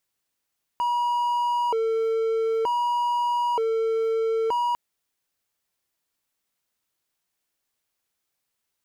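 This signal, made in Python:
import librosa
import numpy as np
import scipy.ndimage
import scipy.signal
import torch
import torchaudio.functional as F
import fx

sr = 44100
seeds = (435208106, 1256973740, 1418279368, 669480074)

y = fx.siren(sr, length_s=3.95, kind='hi-lo', low_hz=449.0, high_hz=962.0, per_s=0.54, wave='triangle', level_db=-19.0)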